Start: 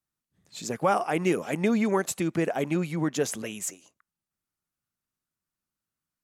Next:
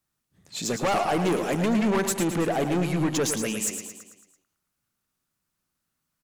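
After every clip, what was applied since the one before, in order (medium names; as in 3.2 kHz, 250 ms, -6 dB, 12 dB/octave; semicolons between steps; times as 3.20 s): saturation -28.5 dBFS, distortion -7 dB; on a send: feedback delay 111 ms, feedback 53%, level -8 dB; on the sum: trim +7.5 dB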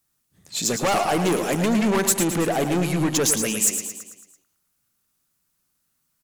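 treble shelf 5.2 kHz +8.5 dB; trim +2.5 dB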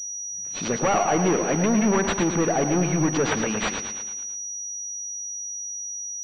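on a send at -19 dB: reverberation RT60 1.3 s, pre-delay 3 ms; on the sum: class-D stage that switches slowly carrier 5.8 kHz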